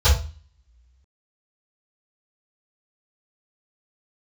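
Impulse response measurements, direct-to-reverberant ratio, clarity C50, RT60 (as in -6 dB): -18.0 dB, 6.0 dB, 0.35 s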